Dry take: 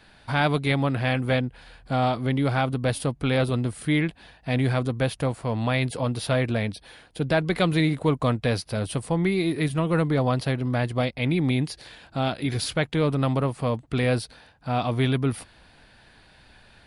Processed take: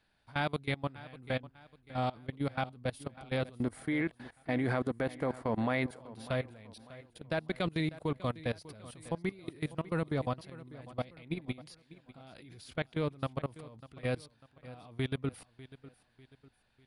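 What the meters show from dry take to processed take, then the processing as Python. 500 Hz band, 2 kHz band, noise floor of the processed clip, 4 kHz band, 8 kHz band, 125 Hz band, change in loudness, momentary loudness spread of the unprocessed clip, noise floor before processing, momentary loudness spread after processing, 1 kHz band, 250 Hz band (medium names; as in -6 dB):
-10.5 dB, -10.5 dB, -71 dBFS, -13.5 dB, -17.0 dB, -14.0 dB, -11.0 dB, 6 LU, -55 dBFS, 19 LU, -11.0 dB, -11.5 dB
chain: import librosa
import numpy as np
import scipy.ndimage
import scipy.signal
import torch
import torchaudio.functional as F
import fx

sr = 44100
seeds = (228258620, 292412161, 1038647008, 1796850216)

p1 = fx.spec_box(x, sr, start_s=3.6, length_s=2.4, low_hz=210.0, high_hz=2300.0, gain_db=8)
p2 = fx.level_steps(p1, sr, step_db=22)
p3 = p2 + fx.echo_feedback(p2, sr, ms=597, feedback_pct=41, wet_db=-17.5, dry=0)
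y = p3 * 10.0 ** (-8.5 / 20.0)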